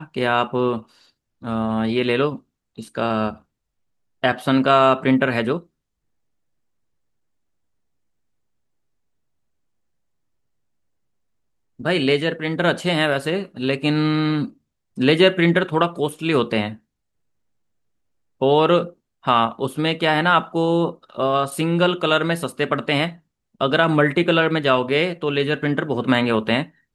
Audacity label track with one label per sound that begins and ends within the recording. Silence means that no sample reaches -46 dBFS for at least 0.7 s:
4.230000	5.640000	sound
11.790000	16.780000	sound